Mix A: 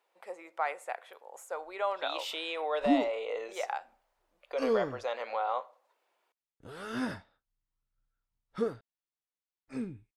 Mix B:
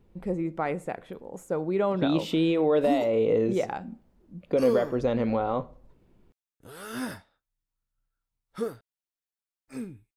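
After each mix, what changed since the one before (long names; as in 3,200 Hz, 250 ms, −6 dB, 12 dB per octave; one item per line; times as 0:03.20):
speech: remove high-pass filter 670 Hz 24 dB per octave
background: remove high-frequency loss of the air 77 metres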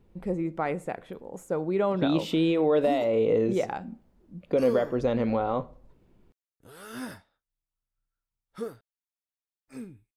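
background −4.0 dB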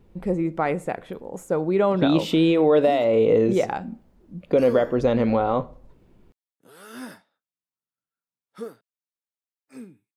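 speech +5.5 dB
background: add high-pass filter 160 Hz 24 dB per octave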